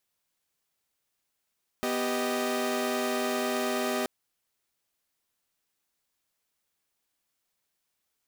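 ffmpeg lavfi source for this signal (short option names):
-f lavfi -i "aevalsrc='0.0355*((2*mod(246.94*t,1)-1)+(2*mod(392*t,1)-1)+(2*mod(622.25*t,1)-1))':d=2.23:s=44100"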